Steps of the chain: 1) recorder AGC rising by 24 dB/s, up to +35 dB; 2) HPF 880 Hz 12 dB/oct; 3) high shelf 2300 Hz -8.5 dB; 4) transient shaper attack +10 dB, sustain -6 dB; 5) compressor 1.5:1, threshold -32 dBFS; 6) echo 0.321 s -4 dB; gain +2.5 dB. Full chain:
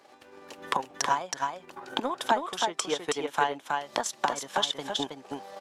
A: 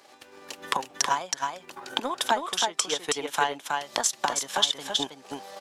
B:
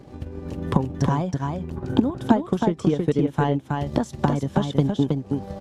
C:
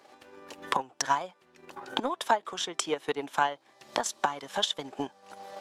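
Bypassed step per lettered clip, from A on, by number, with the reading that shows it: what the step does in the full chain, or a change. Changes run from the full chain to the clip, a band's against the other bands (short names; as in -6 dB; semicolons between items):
3, 8 kHz band +7.5 dB; 2, 125 Hz band +28.5 dB; 6, momentary loudness spread change +9 LU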